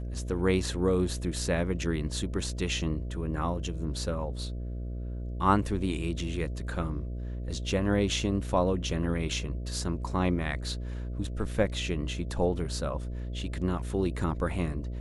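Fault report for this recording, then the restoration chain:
mains buzz 60 Hz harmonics 11 −35 dBFS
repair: hum removal 60 Hz, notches 11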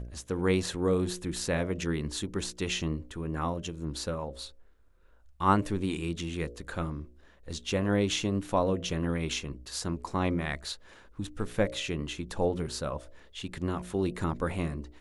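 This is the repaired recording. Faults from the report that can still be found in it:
none of them is left

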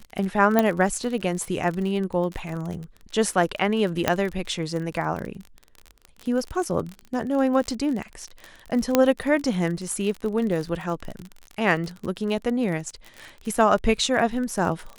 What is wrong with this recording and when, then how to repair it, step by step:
surface crackle 35 per second −29 dBFS
0:00.59: click −6 dBFS
0:04.08: click −4 dBFS
0:08.95: click −3 dBFS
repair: click removal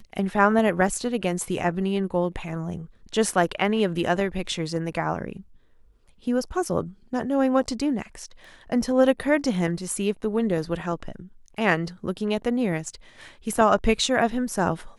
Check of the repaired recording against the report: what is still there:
none of them is left

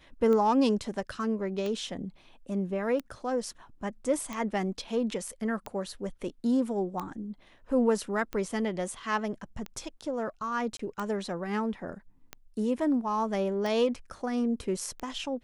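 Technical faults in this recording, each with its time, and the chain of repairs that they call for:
scratch tick 45 rpm −21 dBFS
0:10.77–0:10.79: drop-out 24 ms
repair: click removal
repair the gap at 0:10.77, 24 ms

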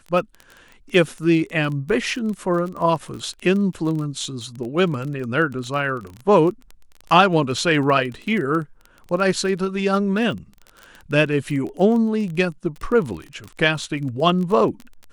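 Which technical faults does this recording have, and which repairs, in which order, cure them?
surface crackle 22 per second −27 dBFS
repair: click removal

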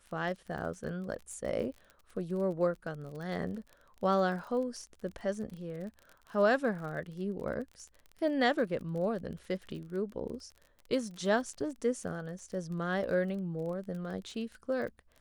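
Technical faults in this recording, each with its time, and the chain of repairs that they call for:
surface crackle 33 per second −41 dBFS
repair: click removal

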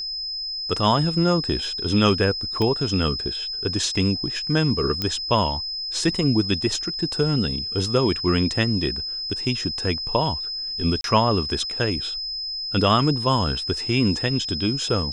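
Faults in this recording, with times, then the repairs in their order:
whistle 5,100 Hz −27 dBFS
0:02.62: click −13 dBFS
0:05.02: click −11 dBFS
0:11.01–0:11.04: drop-out 32 ms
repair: click removal
notch filter 5,100 Hz, Q 30
repair the gap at 0:11.01, 32 ms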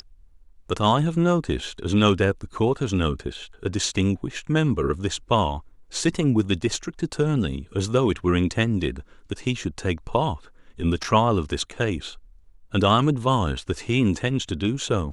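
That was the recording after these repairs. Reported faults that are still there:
none of them is left

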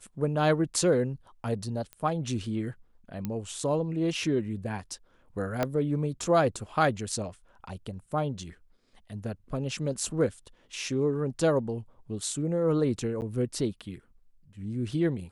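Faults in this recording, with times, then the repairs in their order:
0:01.93: click −25 dBFS
0:03.25: click −19 dBFS
0:05.63: click −13 dBFS
0:13.21–0:13.22: drop-out 9.5 ms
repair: click removal
repair the gap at 0:13.21, 9.5 ms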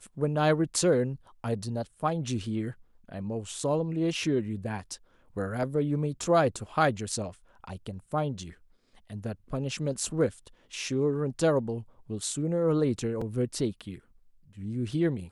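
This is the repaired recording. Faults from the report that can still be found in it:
0:05.63: click

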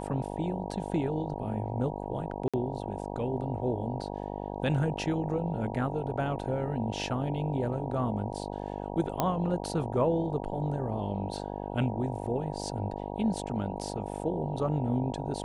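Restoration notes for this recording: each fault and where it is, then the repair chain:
mains buzz 50 Hz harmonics 19 −37 dBFS
0:02.48–0:02.54: drop-out 56 ms
0:09.20: click −12 dBFS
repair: click removal
hum removal 50 Hz, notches 19
repair the gap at 0:02.48, 56 ms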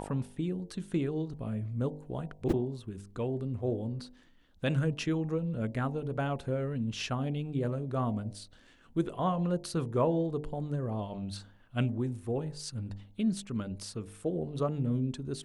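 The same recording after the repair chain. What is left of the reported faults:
none of them is left

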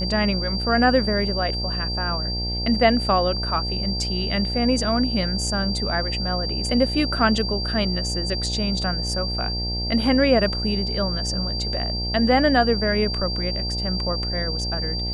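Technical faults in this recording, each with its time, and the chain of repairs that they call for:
mains buzz 60 Hz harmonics 15 −28 dBFS
whistle 4,700 Hz −27 dBFS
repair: hum removal 60 Hz, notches 15
notch filter 4,700 Hz, Q 30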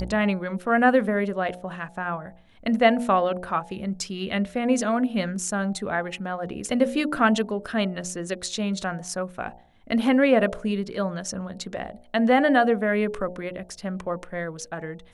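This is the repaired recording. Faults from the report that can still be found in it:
none of them is left

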